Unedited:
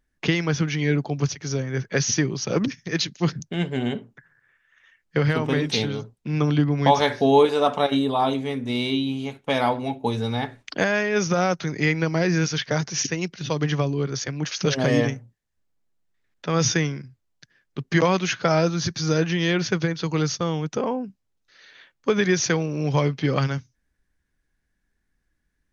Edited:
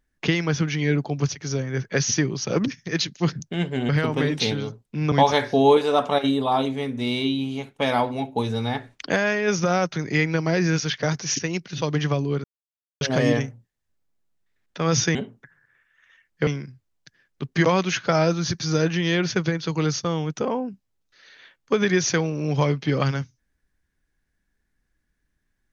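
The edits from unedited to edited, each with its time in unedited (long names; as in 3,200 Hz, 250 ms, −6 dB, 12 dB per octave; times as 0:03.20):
0:03.89–0:05.21: move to 0:16.83
0:06.44–0:06.80: remove
0:14.12–0:14.69: silence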